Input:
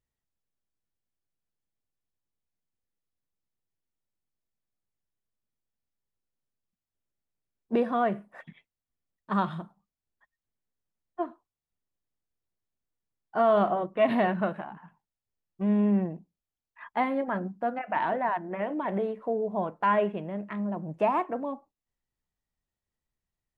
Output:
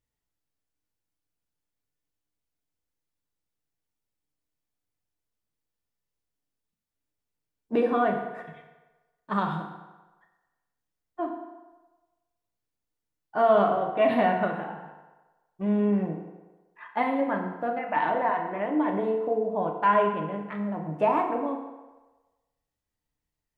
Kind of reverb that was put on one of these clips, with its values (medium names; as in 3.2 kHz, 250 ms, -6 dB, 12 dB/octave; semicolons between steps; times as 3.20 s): FDN reverb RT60 1.2 s, low-frequency decay 0.75×, high-frequency decay 0.75×, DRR 1.5 dB